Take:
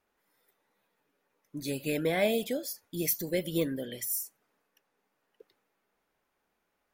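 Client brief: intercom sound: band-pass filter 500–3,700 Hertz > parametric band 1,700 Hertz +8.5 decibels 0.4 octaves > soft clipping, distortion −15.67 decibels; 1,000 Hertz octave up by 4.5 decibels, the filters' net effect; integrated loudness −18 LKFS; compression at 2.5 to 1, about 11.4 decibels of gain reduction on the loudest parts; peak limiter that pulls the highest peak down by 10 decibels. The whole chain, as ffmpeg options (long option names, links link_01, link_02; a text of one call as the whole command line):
ffmpeg -i in.wav -af "equalizer=frequency=1000:width_type=o:gain=8.5,acompressor=threshold=-37dB:ratio=2.5,alimiter=level_in=7.5dB:limit=-24dB:level=0:latency=1,volume=-7.5dB,highpass=500,lowpass=3700,equalizer=frequency=1700:width_type=o:width=0.4:gain=8.5,asoftclip=threshold=-36.5dB,volume=29dB" out.wav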